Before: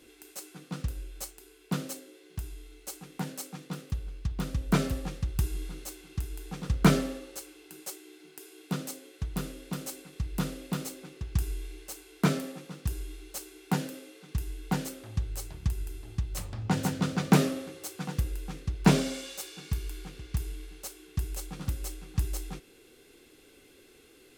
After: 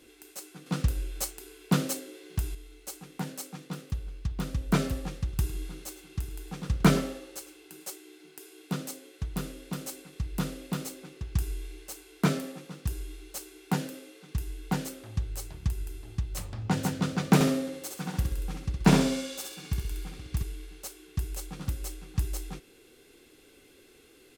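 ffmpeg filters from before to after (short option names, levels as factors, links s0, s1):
-filter_complex "[0:a]asettb=1/sr,asplit=3[s0][s1][s2];[s0]atrim=end=0.664[s3];[s1]atrim=start=0.66:end=2.55,asetpts=PTS-STARTPTS,afade=t=in:d=0.004:c=qsin,afade=t=out:st=1.886:d=0.004:c=qsin,acontrast=74[s4];[s2]atrim=start=2.546[s5];[s3][s4]acrossfade=d=0.004:c1=hsin:c2=qsin[s6];[s6][s5]acrossfade=d=0.004:c1=qsin:c2=hsin,asplit=3[s7][s8][s9];[s7]afade=t=out:st=5.26:d=0.02[s10];[s8]aecho=1:1:105:0.15,afade=t=in:st=5.26:d=0.02,afade=t=out:st=7.91:d=0.02[s11];[s9]afade=t=in:st=7.91:d=0.02[s12];[s10][s11][s12]amix=inputs=3:normalize=0,asettb=1/sr,asplit=3[s13][s14][s15];[s13]atrim=end=17.344[s16];[s14]atrim=start=17.34:end=20.43,asetpts=PTS-STARTPTS,afade=t=in:d=0.004:c=qsin,afade=t=out:st=3.086:d=0.004:c=qsin,aecho=1:1:65|130|195|260|325:0.596|0.226|0.086|0.0327|0.0124,atrim=end_sample=136269[s17];[s15]atrim=start=20.426[s18];[s16][s17]acrossfade=d=0.004:c1=hsin:c2=qsin[s19];[s19][s18]acrossfade=d=0.004:c1=qsin:c2=hsin"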